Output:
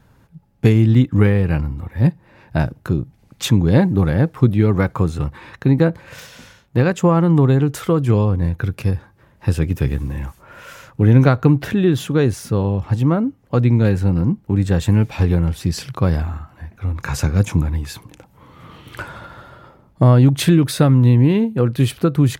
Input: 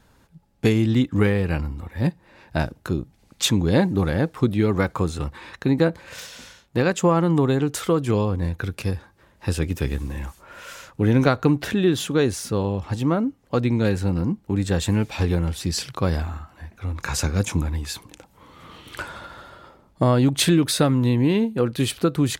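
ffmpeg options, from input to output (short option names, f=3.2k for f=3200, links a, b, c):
-af "equalizer=f=125:t=o:w=1:g=8,equalizer=f=4k:t=o:w=1:g=-4,equalizer=f=8k:t=o:w=1:g=-5,volume=2dB"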